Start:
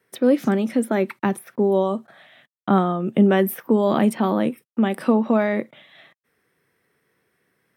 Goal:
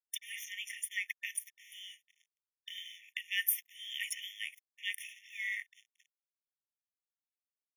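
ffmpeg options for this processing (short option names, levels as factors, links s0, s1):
-filter_complex "[0:a]agate=range=0.0224:threshold=0.00501:ratio=3:detection=peak,acrossover=split=710|3800[s0][s1][s2];[s2]acontrast=21[s3];[s0][s1][s3]amix=inputs=3:normalize=0,afreqshift=-120,aeval=exprs='sgn(val(0))*max(abs(val(0))-0.00668,0)':c=same,afftfilt=real='re*eq(mod(floor(b*sr/1024/1800),2),1)':imag='im*eq(mod(floor(b*sr/1024/1800),2),1)':win_size=1024:overlap=0.75"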